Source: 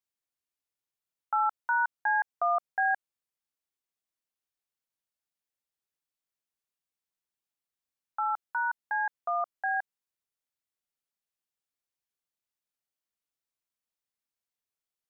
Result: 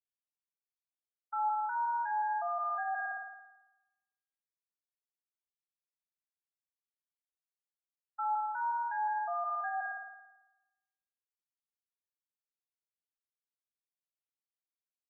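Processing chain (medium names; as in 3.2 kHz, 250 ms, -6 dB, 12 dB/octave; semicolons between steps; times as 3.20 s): expander -31 dBFS; band-stop 800 Hz, Q 12; spring tank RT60 1.5 s, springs 55 ms, chirp 60 ms, DRR 2.5 dB; compression 5:1, threshold -31 dBFS, peak gain reduction 8.5 dB; LFO high-pass saw up 0.14 Hz 360–1600 Hz; peak limiter -25.5 dBFS, peak gain reduction 7.5 dB; spectral contrast expander 1.5:1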